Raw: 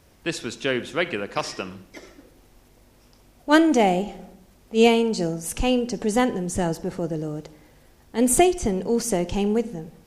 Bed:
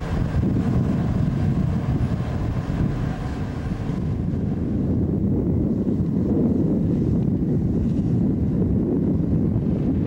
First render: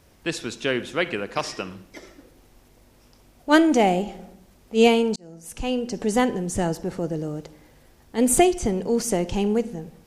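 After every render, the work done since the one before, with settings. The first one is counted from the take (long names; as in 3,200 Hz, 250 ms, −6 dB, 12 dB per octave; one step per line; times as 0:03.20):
0:05.16–0:06.07: fade in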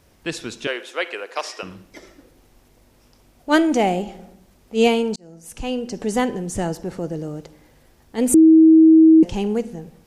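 0:00.67–0:01.63: high-pass filter 420 Hz 24 dB per octave
0:08.34–0:09.23: beep over 320 Hz −6.5 dBFS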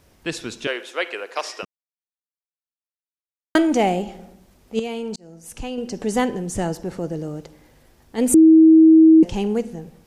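0:01.65–0:03.55: silence
0:04.79–0:05.78: downward compressor 8 to 1, threshold −24 dBFS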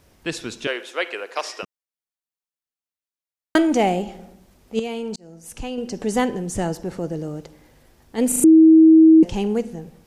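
0:08.28: stutter in place 0.04 s, 4 plays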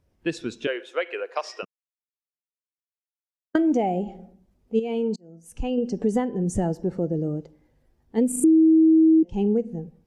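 downward compressor 12 to 1, threshold −23 dBFS, peak gain reduction 14.5 dB
every bin expanded away from the loudest bin 1.5 to 1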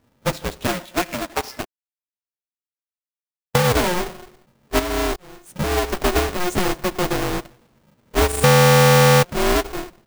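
each half-wave held at its own peak
ring modulator with a square carrier 180 Hz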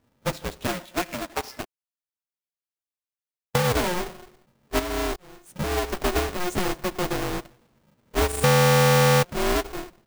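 level −5 dB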